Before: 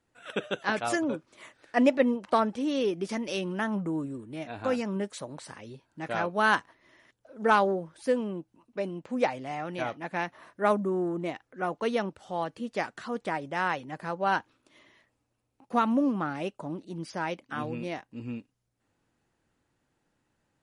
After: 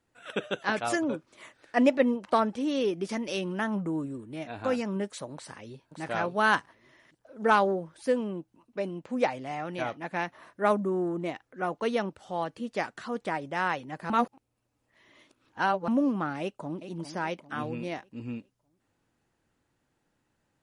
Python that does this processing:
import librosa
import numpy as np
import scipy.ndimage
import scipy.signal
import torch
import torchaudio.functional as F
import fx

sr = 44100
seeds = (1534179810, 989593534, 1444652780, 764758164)

y = fx.echo_throw(x, sr, start_s=5.34, length_s=0.66, ms=570, feedback_pct=15, wet_db=-6.5)
y = fx.echo_throw(y, sr, start_s=16.41, length_s=0.47, ms=400, feedback_pct=45, wet_db=-11.0)
y = fx.edit(y, sr, fx.reverse_span(start_s=14.1, length_s=1.78), tone=tone)